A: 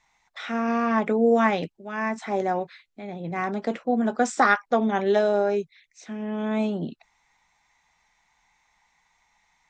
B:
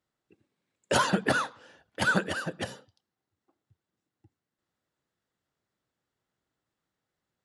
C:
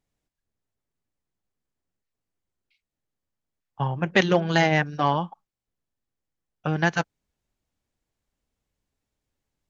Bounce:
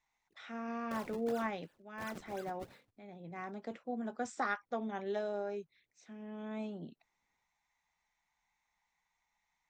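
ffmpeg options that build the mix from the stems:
ffmpeg -i stem1.wav -i stem2.wav -filter_complex "[0:a]volume=-16dB[link_01];[1:a]acompressor=threshold=-28dB:ratio=6,acrusher=samples=33:mix=1:aa=0.000001:lfo=1:lforange=52.8:lforate=2.8,volume=-7.5dB,afade=type=in:start_time=2.69:duration=0.56:silence=0.316228[link_02];[link_01][link_02]amix=inputs=2:normalize=0" out.wav

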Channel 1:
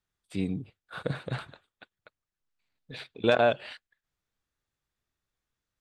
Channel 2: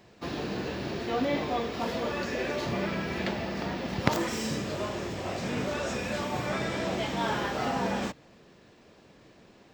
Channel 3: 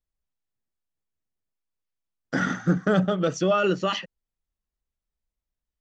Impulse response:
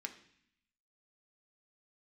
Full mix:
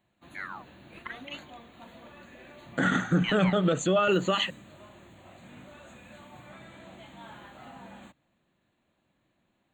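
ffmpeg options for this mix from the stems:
-filter_complex "[0:a]aeval=exprs='val(0)*sin(2*PI*1900*n/s+1900*0.65/0.66*sin(2*PI*0.66*n/s))':channel_layout=same,volume=-6.5dB[link_01];[1:a]equalizer=frequency=440:width_type=o:width=0.35:gain=-12,volume=-16.5dB[link_02];[2:a]highshelf=frequency=5800:gain=11,adelay=450,volume=3dB[link_03];[link_01][link_02][link_03]amix=inputs=3:normalize=0,asuperstop=centerf=5300:order=8:qfactor=2.4,alimiter=limit=-15.5dB:level=0:latency=1:release=58"

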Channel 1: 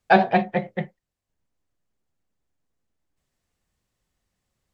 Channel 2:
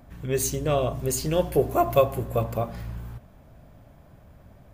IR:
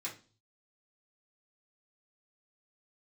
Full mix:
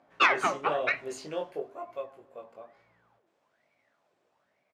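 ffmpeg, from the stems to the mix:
-filter_complex "[0:a]dynaudnorm=framelen=130:gausssize=7:maxgain=8dB,aeval=exprs='val(0)*sin(2*PI*1300*n/s+1300*0.75/1.1*sin(2*PI*1.1*n/s))':channel_layout=same,adelay=100,volume=-1.5dB,asplit=2[link_01][link_02];[link_02]volume=-8.5dB[link_03];[1:a]flanger=delay=18:depth=3.4:speed=1,volume=-1dB,afade=type=out:start_time=1.24:duration=0.51:silence=0.237137[link_04];[2:a]atrim=start_sample=2205[link_05];[link_03][link_05]afir=irnorm=-1:irlink=0[link_06];[link_01][link_04][link_06]amix=inputs=3:normalize=0,highshelf=frequency=3500:gain=-10,asoftclip=type=tanh:threshold=-11dB,highpass=450,lowpass=6600"

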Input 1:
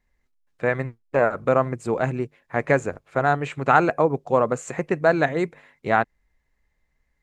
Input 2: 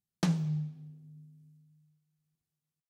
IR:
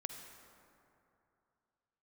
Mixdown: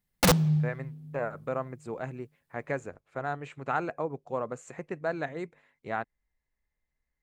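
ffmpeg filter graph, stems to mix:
-filter_complex "[0:a]volume=-13dB[link_01];[1:a]acontrast=72,equalizer=frequency=6300:width=1.5:gain=-5,aeval=exprs='(mod(6.31*val(0)+1,2)-1)/6.31':channel_layout=same,volume=1dB[link_02];[link_01][link_02]amix=inputs=2:normalize=0"

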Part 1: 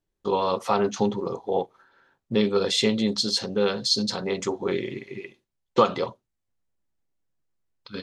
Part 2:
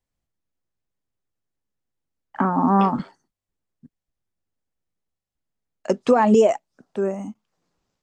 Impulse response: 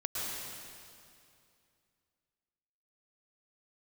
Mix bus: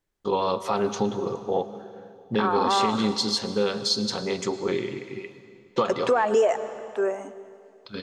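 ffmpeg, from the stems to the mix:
-filter_complex "[0:a]volume=-1.5dB,asplit=2[link_01][link_02];[link_02]volume=-15.5dB[link_03];[1:a]highpass=frequency=330:width=0.5412,highpass=frequency=330:width=1.3066,equalizer=frequency=1600:width=1.7:gain=6.5,volume=-1dB,asplit=2[link_04][link_05];[link_05]volume=-19dB[link_06];[2:a]atrim=start_sample=2205[link_07];[link_03][link_06]amix=inputs=2:normalize=0[link_08];[link_08][link_07]afir=irnorm=-1:irlink=0[link_09];[link_01][link_04][link_09]amix=inputs=3:normalize=0,asoftclip=type=tanh:threshold=-3.5dB,alimiter=limit=-13dB:level=0:latency=1:release=132"

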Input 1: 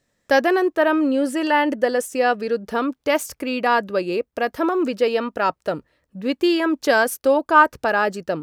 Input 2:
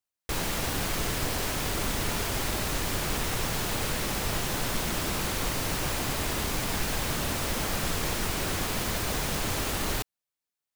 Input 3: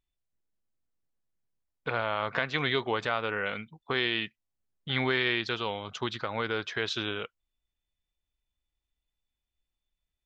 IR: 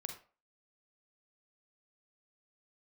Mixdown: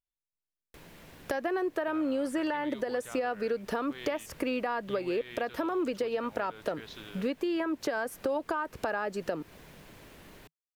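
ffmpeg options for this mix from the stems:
-filter_complex "[0:a]acrossover=split=260|2300[link_01][link_02][link_03];[link_01]acompressor=threshold=-40dB:ratio=4[link_04];[link_02]acompressor=threshold=-18dB:ratio=4[link_05];[link_03]acompressor=threshold=-42dB:ratio=4[link_06];[link_04][link_05][link_06]amix=inputs=3:normalize=0,adelay=1000,volume=3dB[link_07];[1:a]equalizer=frequency=160:width_type=o:width=0.33:gain=5,equalizer=frequency=800:width_type=o:width=0.33:gain=-5,equalizer=frequency=1250:width_type=o:width=0.33:gain=-6,equalizer=frequency=12500:width_type=o:width=0.33:gain=5,acrossover=split=150|3200[link_08][link_09][link_10];[link_08]acompressor=threshold=-41dB:ratio=4[link_11];[link_09]acompressor=threshold=-34dB:ratio=4[link_12];[link_10]acompressor=threshold=-47dB:ratio=4[link_13];[link_11][link_12][link_13]amix=inputs=3:normalize=0,adelay=450,volume=-16.5dB[link_14];[2:a]volume=-14dB[link_15];[link_07][link_14]amix=inputs=2:normalize=0,alimiter=limit=-14.5dB:level=0:latency=1:release=281,volume=0dB[link_16];[link_15][link_16]amix=inputs=2:normalize=0,acompressor=threshold=-29dB:ratio=4"

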